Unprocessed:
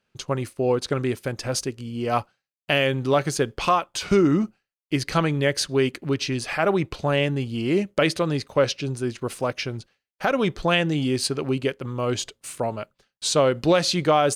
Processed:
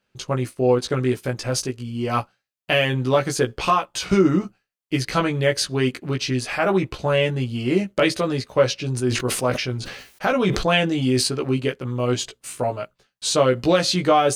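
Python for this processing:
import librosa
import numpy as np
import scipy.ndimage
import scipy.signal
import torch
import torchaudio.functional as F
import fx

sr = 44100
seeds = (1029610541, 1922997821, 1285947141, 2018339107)

y = fx.doubler(x, sr, ms=16.0, db=-3.0)
y = fx.sustainer(y, sr, db_per_s=54.0, at=(8.86, 11.28))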